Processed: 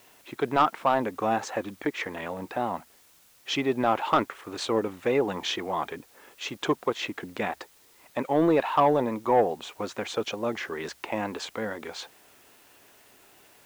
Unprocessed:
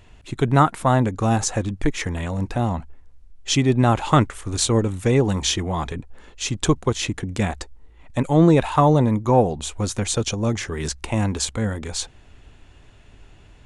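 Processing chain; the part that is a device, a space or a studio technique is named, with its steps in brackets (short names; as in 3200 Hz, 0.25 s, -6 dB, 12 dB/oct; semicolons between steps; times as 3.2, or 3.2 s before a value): tape answering machine (BPF 380–2800 Hz; soft clip -10.5 dBFS, distortion -16 dB; wow and flutter; white noise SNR 30 dB); gain -1 dB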